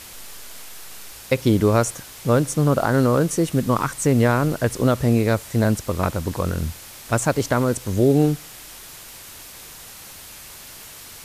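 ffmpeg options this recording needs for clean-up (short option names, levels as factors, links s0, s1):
-af "adeclick=t=4,afwtdn=0.011"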